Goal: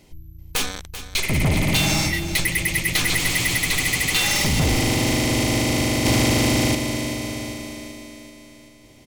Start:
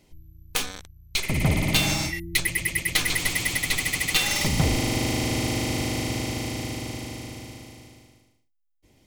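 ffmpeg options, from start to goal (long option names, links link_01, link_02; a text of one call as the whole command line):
ffmpeg -i in.wav -filter_complex "[0:a]asplit=2[link_01][link_02];[link_02]alimiter=limit=-17dB:level=0:latency=1,volume=2dB[link_03];[link_01][link_03]amix=inputs=2:normalize=0,asettb=1/sr,asplit=3[link_04][link_05][link_06];[link_04]atrim=end=6.054[link_07];[link_05]atrim=start=6.05:end=6.75,asetpts=PTS-STARTPTS,afade=type=in:duration=0.004:curve=qsin,afade=type=out:start_time=0.696:duration=0.004:curve=qsin,acontrast=71[link_08];[link_06]atrim=start=6.746[link_09];[link_07][link_08]acrossfade=duration=0.004:curve1=hsin:curve2=qsin[link_10];[link_10][link_09]acrossfade=duration=0.004:curve1=qsin:curve2=hsin,asoftclip=type=tanh:threshold=-13dB,aecho=1:1:387|774|1161|1548|1935|2322:0.251|0.146|0.0845|0.049|0.0284|0.0165" out.wav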